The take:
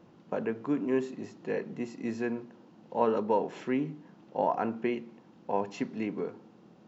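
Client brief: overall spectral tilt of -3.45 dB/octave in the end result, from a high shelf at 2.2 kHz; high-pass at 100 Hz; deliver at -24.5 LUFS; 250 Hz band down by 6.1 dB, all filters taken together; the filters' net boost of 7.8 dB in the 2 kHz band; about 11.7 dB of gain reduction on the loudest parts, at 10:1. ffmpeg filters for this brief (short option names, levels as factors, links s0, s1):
-af "highpass=100,equalizer=f=250:t=o:g=-7.5,equalizer=f=2000:t=o:g=7,highshelf=f=2200:g=5,acompressor=threshold=0.0224:ratio=10,volume=5.96"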